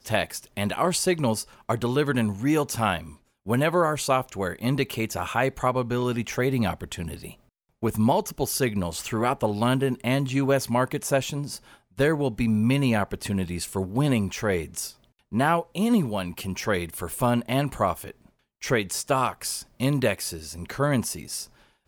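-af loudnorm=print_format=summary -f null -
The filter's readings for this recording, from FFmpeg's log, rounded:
Input Integrated:    -25.9 LUFS
Input True Peak:      -7.5 dBTP
Input LRA:             2.8 LU
Input Threshold:     -36.2 LUFS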